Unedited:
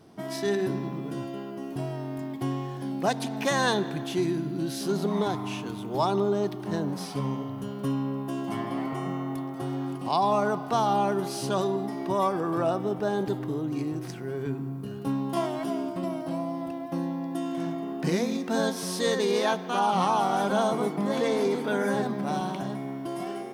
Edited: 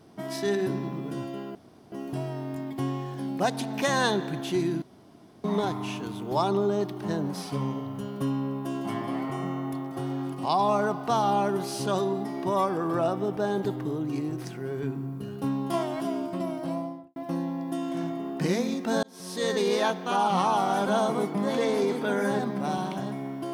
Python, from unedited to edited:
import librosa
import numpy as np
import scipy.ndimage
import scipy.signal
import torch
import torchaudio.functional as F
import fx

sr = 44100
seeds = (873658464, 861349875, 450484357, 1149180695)

y = fx.studio_fade_out(x, sr, start_s=16.36, length_s=0.43)
y = fx.edit(y, sr, fx.insert_room_tone(at_s=1.55, length_s=0.37),
    fx.room_tone_fill(start_s=4.45, length_s=0.62),
    fx.fade_in_span(start_s=18.66, length_s=0.54), tone=tone)